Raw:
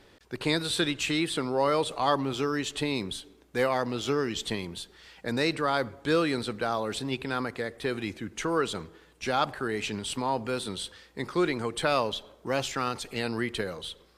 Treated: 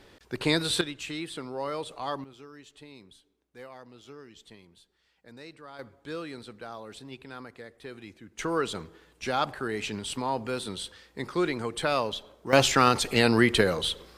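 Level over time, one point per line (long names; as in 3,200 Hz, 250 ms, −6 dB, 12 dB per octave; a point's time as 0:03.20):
+2 dB
from 0:00.81 −8 dB
from 0:02.24 −19.5 dB
from 0:05.79 −12 dB
from 0:08.39 −1 dB
from 0:12.53 +9.5 dB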